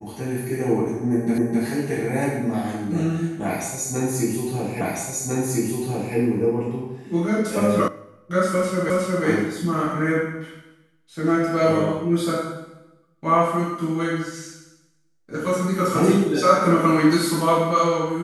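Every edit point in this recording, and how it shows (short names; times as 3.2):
1.38 repeat of the last 0.26 s
4.81 repeat of the last 1.35 s
7.88 sound cut off
8.9 repeat of the last 0.36 s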